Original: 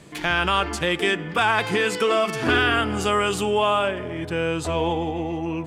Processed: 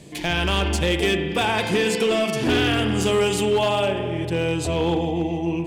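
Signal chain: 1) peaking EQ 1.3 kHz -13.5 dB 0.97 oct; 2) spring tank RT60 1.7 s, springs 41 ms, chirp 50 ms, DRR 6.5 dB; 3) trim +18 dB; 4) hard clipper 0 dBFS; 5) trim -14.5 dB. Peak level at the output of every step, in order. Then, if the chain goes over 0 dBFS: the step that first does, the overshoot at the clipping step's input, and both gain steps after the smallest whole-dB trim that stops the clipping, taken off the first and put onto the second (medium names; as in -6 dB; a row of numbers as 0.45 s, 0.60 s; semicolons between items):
-10.5 dBFS, -10.5 dBFS, +7.5 dBFS, 0.0 dBFS, -14.5 dBFS; step 3, 7.5 dB; step 3 +10 dB, step 5 -6.5 dB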